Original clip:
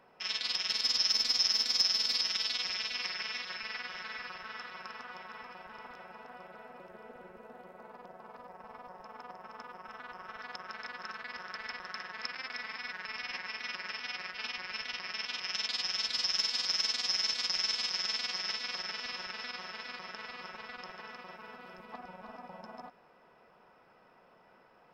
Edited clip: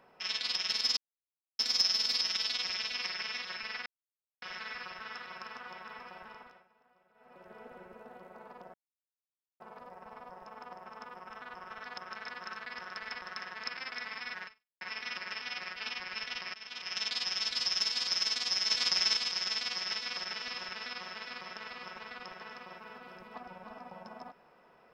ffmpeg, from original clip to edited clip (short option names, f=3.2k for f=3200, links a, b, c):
-filter_complex "[0:a]asplit=11[a][b][c][d][e][f][g][h][i][j][k];[a]atrim=end=0.97,asetpts=PTS-STARTPTS,afade=t=out:st=0.966:d=0.004:c=hsin[l];[b]atrim=start=0.97:end=1.59,asetpts=PTS-STARTPTS,volume=0[m];[c]atrim=start=1.59:end=3.86,asetpts=PTS-STARTPTS,afade=t=in:d=0.004:c=hsin,afade=t=out:st=2.266:d=0.004:c=hsin,apad=pad_dur=0.56[n];[d]atrim=start=3.86:end=6.11,asetpts=PTS-STARTPTS,afade=t=in:d=0.004:c=hsin,afade=t=out:st=1.81:d=0.44:silence=0.1[o];[e]atrim=start=6.11:end=6.58,asetpts=PTS-STARTPTS,volume=-20dB[p];[f]atrim=start=6.58:end=8.18,asetpts=PTS-STARTPTS,afade=t=in:d=0.44:silence=0.1,afade=t=out:st=1.596:d=0.004:c=hsin,apad=pad_dur=0.86[q];[g]atrim=start=8.18:end=13.39,asetpts=PTS-STARTPTS,afade=t=in:d=0.004:c=hsin,afade=t=out:st=4.85:d=0.36:c=exp[r];[h]atrim=start=13.39:end=15.12,asetpts=PTS-STARTPTS,afade=t=in:d=0.004:c=hsin,afade=t=out:st=1.726:d=0.004:c=hsin:silence=0.188365[s];[i]atrim=start=15.12:end=17.282,asetpts=PTS-STARTPTS,afade=t=in:d=0.47:silence=0.188365[t];[j]atrim=start=17.278:end=17.752,asetpts=PTS-STARTPTS,volume=3.5dB[u];[k]atrim=start=17.748[v];[l][m][n][o][p][q][r][s][t]concat=n=9:v=0:a=1[w];[w][u]acrossfade=d=0.004:c1=hsin:c2=hsin[x];[x][v]acrossfade=d=0.004:c1=hsin:c2=hsin"